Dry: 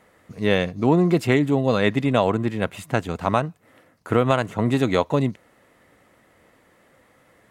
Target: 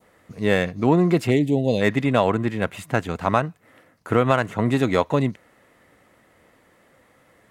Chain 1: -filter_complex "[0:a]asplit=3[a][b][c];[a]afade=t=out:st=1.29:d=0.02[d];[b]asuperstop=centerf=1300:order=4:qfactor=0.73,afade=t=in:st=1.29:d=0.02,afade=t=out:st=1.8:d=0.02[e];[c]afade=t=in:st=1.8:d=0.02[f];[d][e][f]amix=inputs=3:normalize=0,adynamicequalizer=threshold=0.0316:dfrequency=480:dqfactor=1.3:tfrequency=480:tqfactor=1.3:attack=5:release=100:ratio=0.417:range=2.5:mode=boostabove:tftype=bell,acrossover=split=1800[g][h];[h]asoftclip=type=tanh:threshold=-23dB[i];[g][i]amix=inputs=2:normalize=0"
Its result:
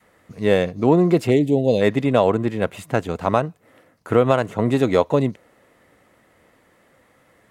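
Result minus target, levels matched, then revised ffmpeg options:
2000 Hz band -5.0 dB
-filter_complex "[0:a]asplit=3[a][b][c];[a]afade=t=out:st=1.29:d=0.02[d];[b]asuperstop=centerf=1300:order=4:qfactor=0.73,afade=t=in:st=1.29:d=0.02,afade=t=out:st=1.8:d=0.02[e];[c]afade=t=in:st=1.8:d=0.02[f];[d][e][f]amix=inputs=3:normalize=0,adynamicequalizer=threshold=0.0316:dfrequency=1800:dqfactor=1.3:tfrequency=1800:tqfactor=1.3:attack=5:release=100:ratio=0.417:range=2.5:mode=boostabove:tftype=bell,acrossover=split=1800[g][h];[h]asoftclip=type=tanh:threshold=-23dB[i];[g][i]amix=inputs=2:normalize=0"

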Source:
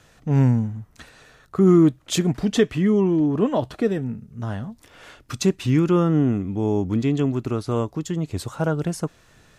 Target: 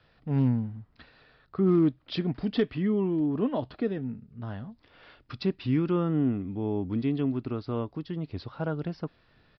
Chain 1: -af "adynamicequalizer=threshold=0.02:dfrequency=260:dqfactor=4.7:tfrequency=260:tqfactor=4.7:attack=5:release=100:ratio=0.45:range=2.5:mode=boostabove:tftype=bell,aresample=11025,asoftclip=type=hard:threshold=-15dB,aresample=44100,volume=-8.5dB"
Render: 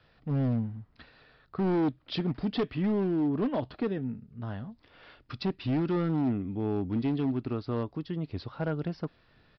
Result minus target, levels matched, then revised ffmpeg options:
hard clip: distortion +25 dB
-af "adynamicequalizer=threshold=0.02:dfrequency=260:dqfactor=4.7:tfrequency=260:tqfactor=4.7:attack=5:release=100:ratio=0.45:range=2.5:mode=boostabove:tftype=bell,aresample=11025,asoftclip=type=hard:threshold=-7.5dB,aresample=44100,volume=-8.5dB"

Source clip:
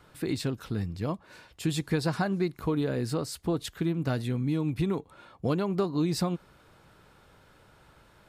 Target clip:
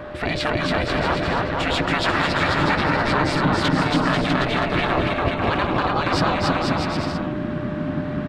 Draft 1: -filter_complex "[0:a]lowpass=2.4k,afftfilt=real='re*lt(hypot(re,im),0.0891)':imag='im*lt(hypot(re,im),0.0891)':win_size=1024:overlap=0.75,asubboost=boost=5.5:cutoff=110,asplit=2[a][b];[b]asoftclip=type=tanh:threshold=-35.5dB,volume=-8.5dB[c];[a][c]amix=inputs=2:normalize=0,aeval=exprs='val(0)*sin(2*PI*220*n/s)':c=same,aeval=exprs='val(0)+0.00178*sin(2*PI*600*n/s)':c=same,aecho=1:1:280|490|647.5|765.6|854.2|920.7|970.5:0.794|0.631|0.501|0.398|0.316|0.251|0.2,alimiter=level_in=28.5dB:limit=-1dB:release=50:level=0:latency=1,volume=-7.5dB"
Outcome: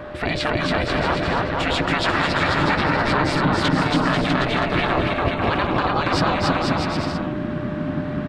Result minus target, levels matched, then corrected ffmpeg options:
soft clip: distortion -7 dB
-filter_complex "[0:a]lowpass=2.4k,afftfilt=real='re*lt(hypot(re,im),0.0891)':imag='im*lt(hypot(re,im),0.0891)':win_size=1024:overlap=0.75,asubboost=boost=5.5:cutoff=110,asplit=2[a][b];[b]asoftclip=type=tanh:threshold=-43dB,volume=-8.5dB[c];[a][c]amix=inputs=2:normalize=0,aeval=exprs='val(0)*sin(2*PI*220*n/s)':c=same,aeval=exprs='val(0)+0.00178*sin(2*PI*600*n/s)':c=same,aecho=1:1:280|490|647.5|765.6|854.2|920.7|970.5:0.794|0.631|0.501|0.398|0.316|0.251|0.2,alimiter=level_in=28.5dB:limit=-1dB:release=50:level=0:latency=1,volume=-7.5dB"

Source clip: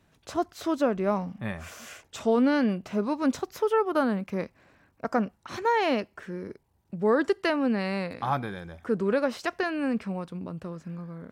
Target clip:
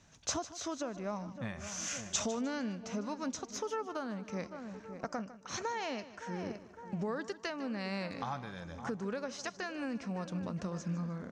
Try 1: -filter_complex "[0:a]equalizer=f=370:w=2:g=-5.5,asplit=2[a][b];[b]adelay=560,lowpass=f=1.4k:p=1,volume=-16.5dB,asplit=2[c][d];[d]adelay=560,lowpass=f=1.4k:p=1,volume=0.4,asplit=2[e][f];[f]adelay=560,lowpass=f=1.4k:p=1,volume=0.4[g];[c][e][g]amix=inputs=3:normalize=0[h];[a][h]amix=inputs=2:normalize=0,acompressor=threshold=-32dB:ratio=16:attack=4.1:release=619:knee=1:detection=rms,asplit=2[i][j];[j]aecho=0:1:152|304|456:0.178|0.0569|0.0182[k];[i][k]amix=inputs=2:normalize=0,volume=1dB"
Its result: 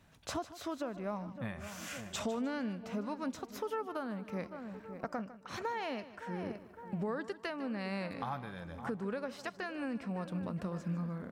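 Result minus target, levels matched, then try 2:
8000 Hz band -10.5 dB
-filter_complex "[0:a]equalizer=f=370:w=2:g=-5.5,asplit=2[a][b];[b]adelay=560,lowpass=f=1.4k:p=1,volume=-16.5dB,asplit=2[c][d];[d]adelay=560,lowpass=f=1.4k:p=1,volume=0.4,asplit=2[e][f];[f]adelay=560,lowpass=f=1.4k:p=1,volume=0.4[g];[c][e][g]amix=inputs=3:normalize=0[h];[a][h]amix=inputs=2:normalize=0,acompressor=threshold=-32dB:ratio=16:attack=4.1:release=619:knee=1:detection=rms,lowpass=f=6.3k:t=q:w=5.2,asplit=2[i][j];[j]aecho=0:1:152|304|456:0.178|0.0569|0.0182[k];[i][k]amix=inputs=2:normalize=0,volume=1dB"

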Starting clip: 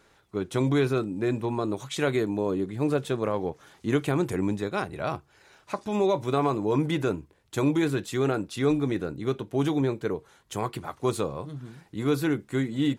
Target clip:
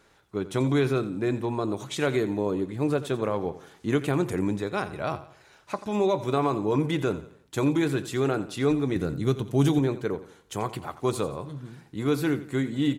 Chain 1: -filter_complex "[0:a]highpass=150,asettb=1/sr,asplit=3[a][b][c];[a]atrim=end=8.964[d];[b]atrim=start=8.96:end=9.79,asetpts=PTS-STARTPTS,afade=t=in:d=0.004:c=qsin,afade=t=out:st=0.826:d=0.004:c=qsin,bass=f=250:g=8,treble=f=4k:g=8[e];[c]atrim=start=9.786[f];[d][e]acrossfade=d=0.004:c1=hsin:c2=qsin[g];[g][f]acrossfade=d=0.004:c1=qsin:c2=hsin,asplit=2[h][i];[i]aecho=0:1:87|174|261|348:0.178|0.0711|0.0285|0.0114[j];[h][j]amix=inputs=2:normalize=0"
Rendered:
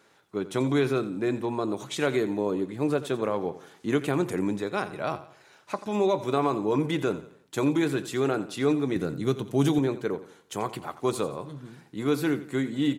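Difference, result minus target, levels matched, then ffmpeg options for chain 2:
125 Hz band -3.5 dB
-filter_complex "[0:a]asettb=1/sr,asplit=3[a][b][c];[a]atrim=end=8.964[d];[b]atrim=start=8.96:end=9.79,asetpts=PTS-STARTPTS,afade=t=in:d=0.004:c=qsin,afade=t=out:st=0.826:d=0.004:c=qsin,bass=f=250:g=8,treble=f=4k:g=8[e];[c]atrim=start=9.786[f];[d][e]acrossfade=d=0.004:c1=hsin:c2=qsin[g];[g][f]acrossfade=d=0.004:c1=qsin:c2=hsin,asplit=2[h][i];[i]aecho=0:1:87|174|261|348:0.178|0.0711|0.0285|0.0114[j];[h][j]amix=inputs=2:normalize=0"

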